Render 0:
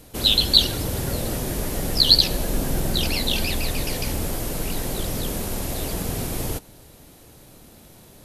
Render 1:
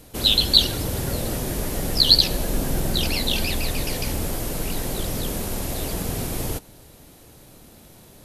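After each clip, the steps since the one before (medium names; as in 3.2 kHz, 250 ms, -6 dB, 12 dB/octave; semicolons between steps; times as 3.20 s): no audible change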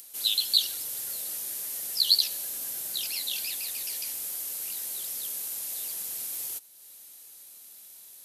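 differentiator; upward compressor, threshold -39 dBFS; trim -2.5 dB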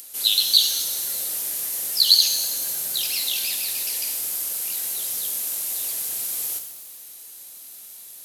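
pitch-shifted reverb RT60 1.3 s, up +7 st, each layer -8 dB, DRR 5 dB; trim +6 dB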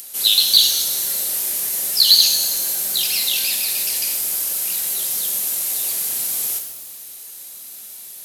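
hard clipper -10.5 dBFS, distortion -16 dB; simulated room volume 980 m³, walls furnished, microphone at 1.1 m; trim +4.5 dB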